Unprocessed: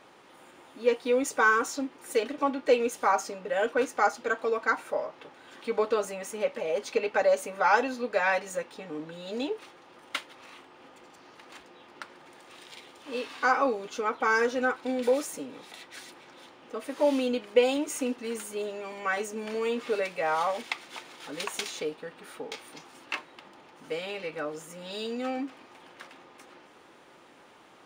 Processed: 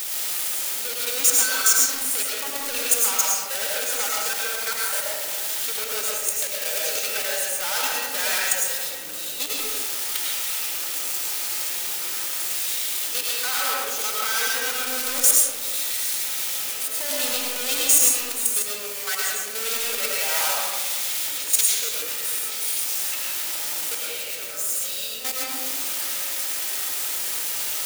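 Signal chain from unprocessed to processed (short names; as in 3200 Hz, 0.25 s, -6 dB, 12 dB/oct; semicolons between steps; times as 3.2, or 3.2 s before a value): zero-crossing step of -31 dBFS; high shelf 4700 Hz +7 dB; notch 1100 Hz, Q 9; in parallel at -3 dB: limiter -20 dBFS, peak gain reduction 11.5 dB; on the sum: sample leveller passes 2; level quantiser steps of 16 dB; soft clip -18 dBFS, distortion -13 dB; buzz 50 Hz, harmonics 11, -39 dBFS -1 dB/oct; pre-emphasis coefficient 0.97; digital reverb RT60 1.5 s, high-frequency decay 0.45×, pre-delay 65 ms, DRR -4 dB; gain +4.5 dB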